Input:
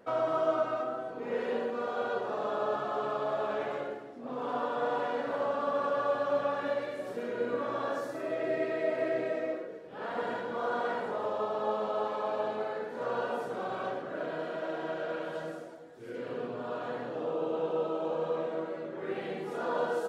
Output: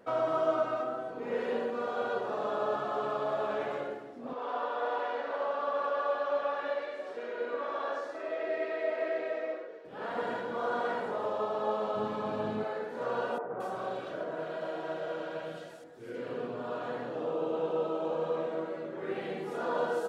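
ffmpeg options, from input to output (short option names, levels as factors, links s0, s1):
-filter_complex "[0:a]asettb=1/sr,asplit=3[s0][s1][s2];[s0]atrim=end=4.334[s3];[s1]atrim=start=4.33:end=9.85,asetpts=PTS-STARTPTS,afade=t=in:d=0.004:c=qsin,afade=t=out:st=5.516:d=0.004:c=qsin,highpass=460,lowpass=5000[s4];[s2]atrim=start=9.846[s5];[s3][s4]acrossfade=d=0.004:c1=hsin:c2=qsin[s6];[s6][s5]acrossfade=d=0.004:c1=qsin:c2=hsin,asplit=3[s7][s8][s9];[s7]afade=t=out:st=11.95:d=0.02[s10];[s8]asubboost=boost=6.5:cutoff=220,afade=t=in:st=11.95:d=0.02,afade=t=out:st=12.63:d=0.02[s11];[s9]afade=t=in:st=12.63:d=0.02[s12];[s10][s11][s12]amix=inputs=3:normalize=0,asettb=1/sr,asplit=3[s13][s14][s15];[s13]atrim=end=13.384[s16];[s14]atrim=start=13.38:end=15.84,asetpts=PTS-STARTPTS,afade=t=in:d=0.004:c=qsin,afade=t=out:st=2.456:d=0.004:c=qsin,acrossover=split=270|1700[s17][s18][s19];[s17]adelay=60[s20];[s19]adelay=220[s21];[s20][s18][s21]amix=inputs=3:normalize=0,atrim=end_sample=108486[s22];[s15]atrim=start=15.836[s23];[s16][s22]acrossfade=d=0.004:c1=hsin:c2=qsin[s24];[s24][s23]acrossfade=d=0.004:c1=qsin:c2=hsin"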